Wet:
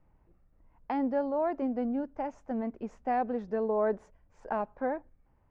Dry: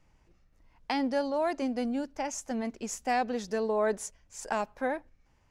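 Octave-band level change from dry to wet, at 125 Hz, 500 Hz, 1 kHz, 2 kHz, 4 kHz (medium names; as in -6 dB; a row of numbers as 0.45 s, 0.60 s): no reading, 0.0 dB, -1.0 dB, -7.5 dB, under -15 dB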